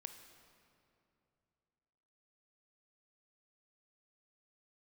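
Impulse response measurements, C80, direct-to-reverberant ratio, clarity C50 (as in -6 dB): 9.0 dB, 7.0 dB, 7.5 dB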